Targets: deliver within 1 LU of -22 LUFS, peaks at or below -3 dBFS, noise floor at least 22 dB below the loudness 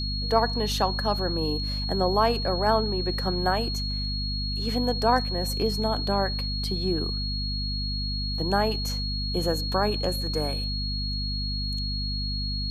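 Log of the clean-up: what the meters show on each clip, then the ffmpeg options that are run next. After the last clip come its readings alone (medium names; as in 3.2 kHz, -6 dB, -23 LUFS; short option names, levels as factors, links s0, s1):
hum 50 Hz; highest harmonic 250 Hz; hum level -28 dBFS; steady tone 4.3 kHz; tone level -31 dBFS; loudness -26.5 LUFS; peak level -7.5 dBFS; loudness target -22.0 LUFS
-> -af "bandreject=f=50:t=h:w=6,bandreject=f=100:t=h:w=6,bandreject=f=150:t=h:w=6,bandreject=f=200:t=h:w=6,bandreject=f=250:t=h:w=6"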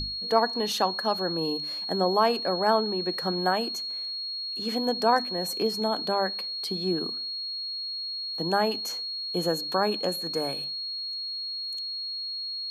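hum not found; steady tone 4.3 kHz; tone level -31 dBFS
-> -af "bandreject=f=4300:w=30"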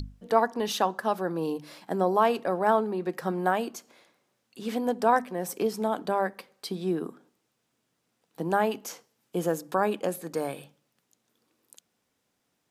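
steady tone not found; loudness -28.5 LUFS; peak level -8.0 dBFS; loudness target -22.0 LUFS
-> -af "volume=2.11,alimiter=limit=0.708:level=0:latency=1"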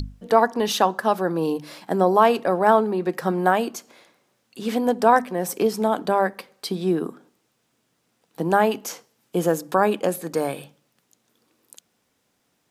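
loudness -22.0 LUFS; peak level -3.0 dBFS; noise floor -70 dBFS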